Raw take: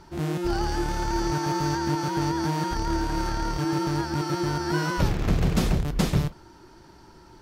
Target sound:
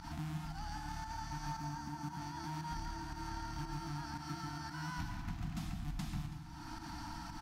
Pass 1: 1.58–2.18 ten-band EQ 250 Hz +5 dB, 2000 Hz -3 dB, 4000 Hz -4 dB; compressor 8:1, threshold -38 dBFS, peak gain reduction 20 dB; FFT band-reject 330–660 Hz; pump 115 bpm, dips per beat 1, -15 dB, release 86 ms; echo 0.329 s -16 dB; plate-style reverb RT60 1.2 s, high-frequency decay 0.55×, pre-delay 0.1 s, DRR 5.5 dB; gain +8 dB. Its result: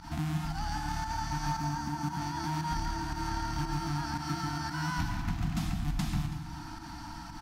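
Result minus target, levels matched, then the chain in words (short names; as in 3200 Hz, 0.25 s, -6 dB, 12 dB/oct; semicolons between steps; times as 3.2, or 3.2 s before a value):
compressor: peak gain reduction -9 dB
1.58–2.18 ten-band EQ 250 Hz +5 dB, 2000 Hz -3 dB, 4000 Hz -4 dB; compressor 8:1, threshold -48.5 dBFS, peak gain reduction 29.5 dB; FFT band-reject 330–660 Hz; pump 115 bpm, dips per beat 1, -15 dB, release 86 ms; echo 0.329 s -16 dB; plate-style reverb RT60 1.2 s, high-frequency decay 0.55×, pre-delay 0.1 s, DRR 5.5 dB; gain +8 dB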